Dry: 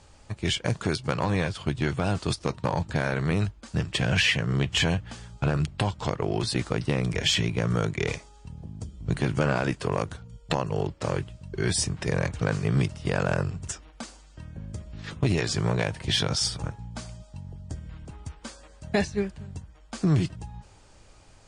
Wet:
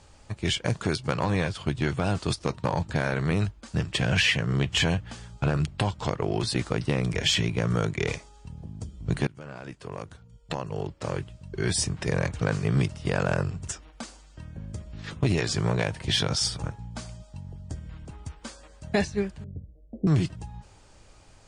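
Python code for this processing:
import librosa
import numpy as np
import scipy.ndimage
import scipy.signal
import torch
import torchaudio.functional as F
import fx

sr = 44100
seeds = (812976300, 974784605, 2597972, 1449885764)

y = fx.steep_lowpass(x, sr, hz=590.0, slope=48, at=(19.44, 20.07))
y = fx.edit(y, sr, fx.fade_in_from(start_s=9.27, length_s=2.61, floor_db=-23.5), tone=tone)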